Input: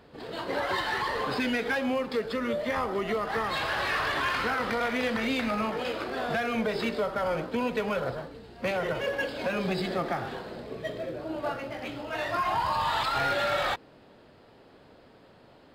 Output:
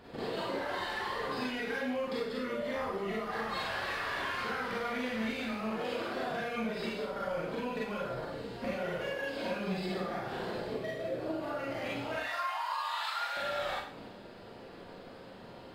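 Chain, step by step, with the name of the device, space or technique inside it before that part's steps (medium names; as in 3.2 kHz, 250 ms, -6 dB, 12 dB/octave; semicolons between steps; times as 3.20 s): 12.15–13.37 s: Bessel high-pass 1 kHz, order 4; drum-bus smash (transient shaper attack +7 dB, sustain +3 dB; compression 12:1, threshold -37 dBFS, peak gain reduction 18 dB; saturation -27 dBFS, distortion -28 dB); Schroeder reverb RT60 0.56 s, combs from 32 ms, DRR -5 dB; trim -1 dB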